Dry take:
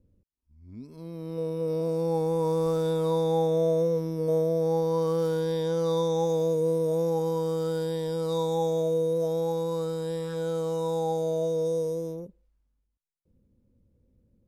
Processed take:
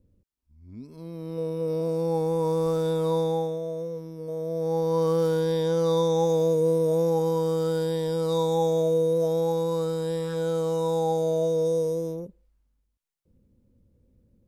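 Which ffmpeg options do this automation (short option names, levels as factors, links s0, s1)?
-af "volume=3.98,afade=t=out:st=3.2:d=0.4:silence=0.354813,afade=t=in:st=4.36:d=0.69:silence=0.281838"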